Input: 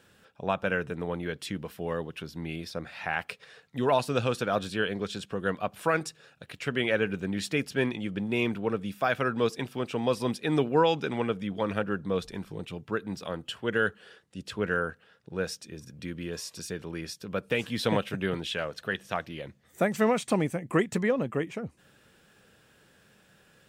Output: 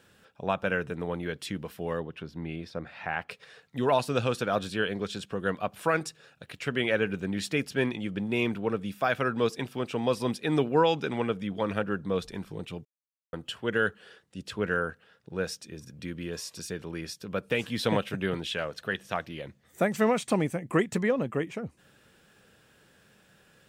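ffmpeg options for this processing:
-filter_complex "[0:a]asettb=1/sr,asplit=3[a][b][c];[a]atrim=end=2.004[d];[b]atrim=start=2:end=3.31,asetpts=PTS-STARTPTS,afade=t=in:d=0.004:c=qsin,afade=t=out:st=1.306:d=0.004:c=qsin,aemphasis=mode=reproduction:type=75kf[e];[c]atrim=start=3.306[f];[d][e]acrossfade=d=0.004:c1=hsin:c2=qsin[g];[g][f]acrossfade=d=0.004:c1=qsin:c2=hsin,asplit=3[h][i][j];[h]atrim=end=12.85,asetpts=PTS-STARTPTS,afade=t=out:st=12.846:d=0.004:c=hsin[k];[i]atrim=start=12.85:end=13.33,asetpts=PTS-STARTPTS,volume=0[l];[j]atrim=start=13.33,asetpts=PTS-STARTPTS,afade=t=in:d=0.004:c=hsin[m];[k][l][m]concat=n=3:v=0:a=1"

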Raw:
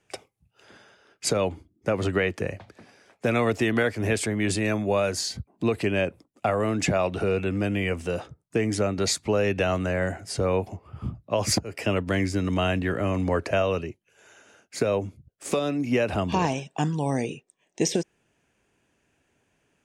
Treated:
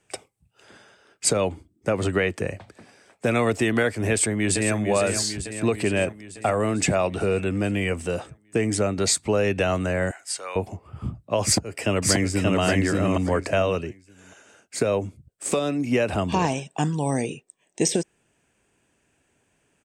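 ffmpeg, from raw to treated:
-filter_complex "[0:a]asplit=2[a][b];[b]afade=t=in:st=4.1:d=0.01,afade=t=out:st=4.77:d=0.01,aecho=0:1:450|900|1350|1800|2250|2700|3150|3600|4050:0.421697|0.274103|0.178167|0.115808|0.0752755|0.048929|0.0318039|0.0206725|0.0134371[c];[a][c]amix=inputs=2:normalize=0,asettb=1/sr,asplit=3[d][e][f];[d]atrim=end=10.114[g];[e]atrim=start=10.11:end=10.56,asetpts=PTS-STARTPTS,afade=t=in:d=0.004:c=qsin,afade=t=out:st=0.446:d=0.004:c=qsin,highpass=1.2k[h];[f]atrim=start=10.556[i];[g][h]acrossfade=d=0.004:c1=hsin:c2=qsin[j];[j][i]acrossfade=d=0.004:c1=qsin:c2=hsin,asplit=2[k][l];[l]afade=t=in:st=11.44:d=0.01,afade=t=out:st=12.59:d=0.01,aecho=0:1:580|1160|1740:0.891251|0.17825|0.03565[m];[k][m]amix=inputs=2:normalize=0,equalizer=f=8.2k:t=o:w=0.23:g=11.5,volume=1.5dB"

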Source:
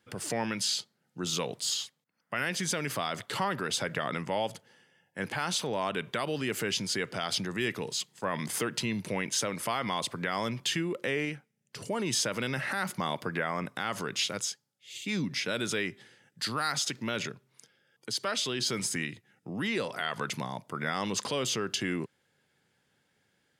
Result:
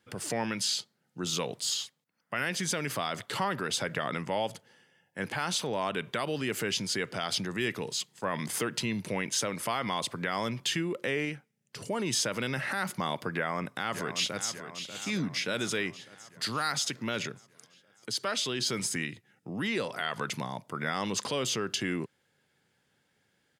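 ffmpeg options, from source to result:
-filter_complex "[0:a]asplit=2[a][b];[b]afade=t=in:st=13.33:d=0.01,afade=t=out:st=14.51:d=0.01,aecho=0:1:590|1180|1770|2360|2950|3540|4130:0.316228|0.189737|0.113842|0.0683052|0.0409831|0.0245899|0.0147539[c];[a][c]amix=inputs=2:normalize=0"

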